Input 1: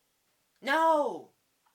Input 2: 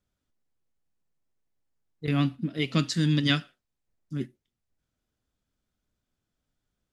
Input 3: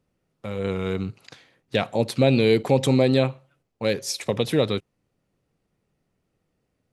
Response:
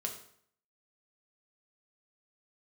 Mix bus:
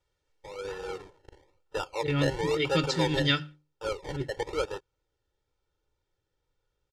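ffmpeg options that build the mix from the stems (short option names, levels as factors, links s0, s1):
-filter_complex "[0:a]aeval=exprs='val(0)*sgn(sin(2*PI*160*n/s))':c=same,volume=0.237,afade=t=out:st=0.79:d=0.43:silence=0.266073[s0];[1:a]bandreject=f=50:t=h:w=6,bandreject=f=100:t=h:w=6,bandreject=f=150:t=h:w=6,bandreject=f=200:t=h:w=6,bandreject=f=250:t=h:w=6,bandreject=f=300:t=h:w=6,volume=0.794[s1];[2:a]highpass=480,acrusher=samples=29:mix=1:aa=0.000001:lfo=1:lforange=17.4:lforate=1,volume=0.316,asplit=2[s2][s3];[s3]apad=whole_len=76775[s4];[s0][s4]sidechaincompress=threshold=0.00398:ratio=8:attack=16:release=729[s5];[s5][s1][s2]amix=inputs=3:normalize=0,lowpass=6400,aecho=1:1:2.2:0.98"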